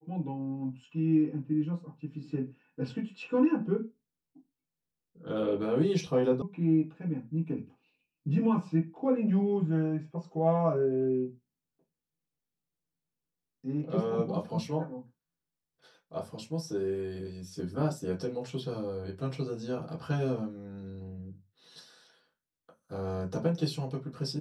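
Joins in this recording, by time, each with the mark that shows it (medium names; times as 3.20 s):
6.42 s: sound stops dead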